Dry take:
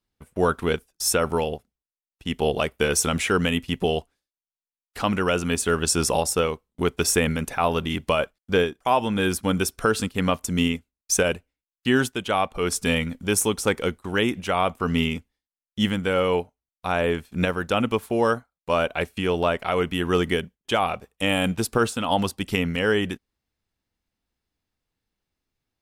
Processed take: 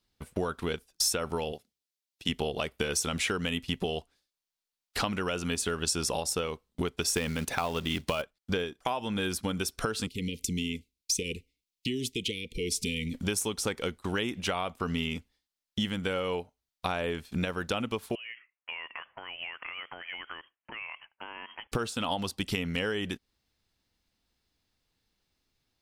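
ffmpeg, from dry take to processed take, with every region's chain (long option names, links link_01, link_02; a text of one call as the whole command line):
ffmpeg -i in.wav -filter_complex "[0:a]asettb=1/sr,asplit=3[link_01][link_02][link_03];[link_01]atrim=end=1.524[link_04];[link_02]atrim=start=1.52:end=2.29,asetpts=PTS-STARTPTS,afade=type=in:duration=0.004:curve=qsin,afade=type=out:start_time=0.766:duration=0.004:curve=qsin,highpass=frequency=320:poles=1,equalizer=frequency=1100:width_type=o:width=1.7:gain=-8[link_05];[link_03]atrim=start=2.286[link_06];[link_04][link_05]acrossfade=duration=0.004:curve1=hsin:curve2=qsin[link_07];[link_07][link_06]acrossfade=duration=0.004:curve1=qsin:curve2=hsin,asettb=1/sr,asplit=3[link_08][link_09][link_10];[link_08]atrim=end=7.164[link_11];[link_09]atrim=start=7.16:end=8.22,asetpts=PTS-STARTPTS,afade=type=in:duration=0.004:curve=qsin,afade=type=out:start_time=1.056:duration=0.004:curve=qsin,highpass=47,acontrast=59,acrusher=bits=5:mode=log:mix=0:aa=0.000001[link_12];[link_10]atrim=start=8.216[link_13];[link_11][link_12]acrossfade=duration=0.004:curve1=hsin:curve2=qsin[link_14];[link_14][link_13]acrossfade=duration=0.004:curve1=qsin:curve2=hsin,asettb=1/sr,asplit=3[link_15][link_16][link_17];[link_15]atrim=end=10.074[link_18];[link_16]atrim=start=10.07:end=13.14,asetpts=PTS-STARTPTS,afade=type=in:duration=0.004:curve=qsin,afade=type=out:start_time=3.066:duration=0.004:curve=qsin,acompressor=threshold=-34dB:ratio=2.5:attack=3.2:release=140:knee=1:detection=peak,asuperstop=centerf=990:order=20:qfactor=0.64[link_19];[link_17]atrim=start=13.136[link_20];[link_18][link_19]acrossfade=duration=0.004:curve1=hsin:curve2=qsin[link_21];[link_21][link_20]acrossfade=duration=0.004:curve1=qsin:curve2=hsin,asettb=1/sr,asplit=3[link_22][link_23][link_24];[link_22]atrim=end=18.154[link_25];[link_23]atrim=start=18.15:end=21.72,asetpts=PTS-STARTPTS,afade=type=in:duration=0.004:curve=qsin,afade=type=out:start_time=3.566:duration=0.004:curve=qsin,highpass=1000,acompressor=threshold=-40dB:ratio=10:attack=3.2:release=140:knee=1:detection=peak,lowpass=frequency=2900:width_type=q:width=0.5098,lowpass=frequency=2900:width_type=q:width=0.6013,lowpass=frequency=2900:width_type=q:width=0.9,lowpass=frequency=2900:width_type=q:width=2.563,afreqshift=-3400[link_26];[link_24]atrim=start=21.716[link_27];[link_25][link_26]acrossfade=duration=0.004:curve1=hsin:curve2=qsin[link_28];[link_28][link_27]acrossfade=duration=0.004:curve1=qsin:curve2=hsin,acompressor=threshold=-31dB:ratio=12,equalizer=frequency=4300:width_type=o:width=1.2:gain=6.5,volume=3dB" out.wav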